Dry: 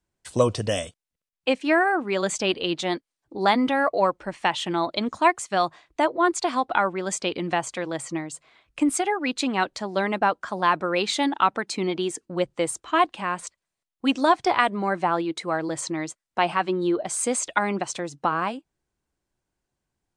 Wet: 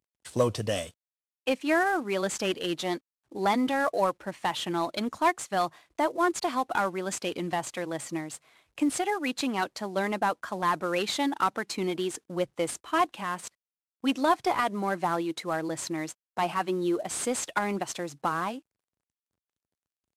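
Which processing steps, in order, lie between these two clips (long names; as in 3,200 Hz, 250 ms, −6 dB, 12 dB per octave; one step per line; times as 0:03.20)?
variable-slope delta modulation 64 kbit/s
high-pass filter 56 Hz
in parallel at −10.5 dB: soft clipping −21.5 dBFS, distortion −9 dB
on the sum: level −5.5 dB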